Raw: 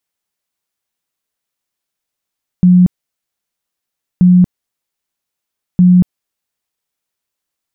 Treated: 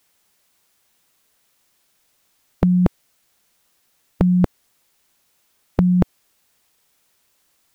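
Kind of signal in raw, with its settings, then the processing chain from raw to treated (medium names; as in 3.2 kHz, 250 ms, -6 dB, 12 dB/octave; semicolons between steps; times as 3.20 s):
tone bursts 180 Hz, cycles 42, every 1.58 s, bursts 3, -3.5 dBFS
spectrum-flattening compressor 2:1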